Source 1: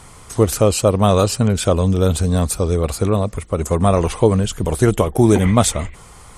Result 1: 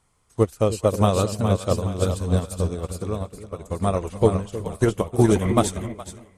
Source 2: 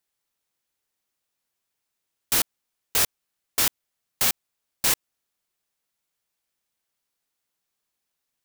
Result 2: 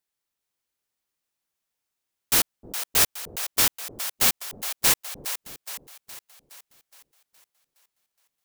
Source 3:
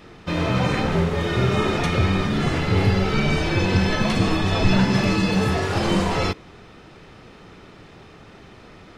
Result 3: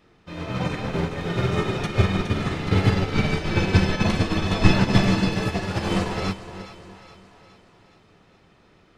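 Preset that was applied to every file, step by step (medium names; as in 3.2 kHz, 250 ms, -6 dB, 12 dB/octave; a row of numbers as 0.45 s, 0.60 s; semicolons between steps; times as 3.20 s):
on a send: two-band feedback delay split 530 Hz, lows 311 ms, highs 417 ms, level -5 dB; on the sum: upward expansion 2.5:1, over -24 dBFS; normalise loudness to -23 LUFS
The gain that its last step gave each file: -2.0 dB, +3.5 dB, +4.0 dB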